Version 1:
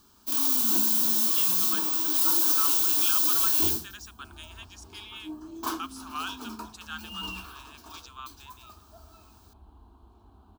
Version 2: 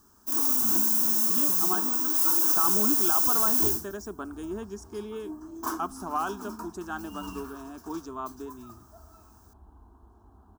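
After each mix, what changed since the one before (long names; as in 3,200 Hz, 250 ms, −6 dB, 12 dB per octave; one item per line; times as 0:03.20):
speech: remove high-pass filter 1,300 Hz 24 dB per octave
master: add flat-topped bell 3,200 Hz −13 dB 1.2 octaves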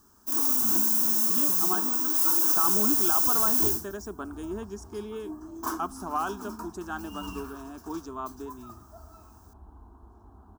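second sound +3.5 dB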